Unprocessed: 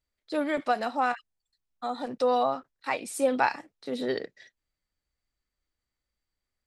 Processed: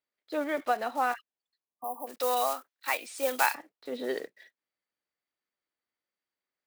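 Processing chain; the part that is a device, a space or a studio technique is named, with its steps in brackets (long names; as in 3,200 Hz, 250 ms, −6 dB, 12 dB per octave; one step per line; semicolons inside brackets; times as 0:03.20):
early digital voice recorder (band-pass filter 300–3,600 Hz; one scale factor per block 5 bits)
0:01.84–0:03.55: spectral tilt +3.5 dB per octave
0:01.62–0:02.07: time-frequency box erased 1,200–9,400 Hz
level −1.5 dB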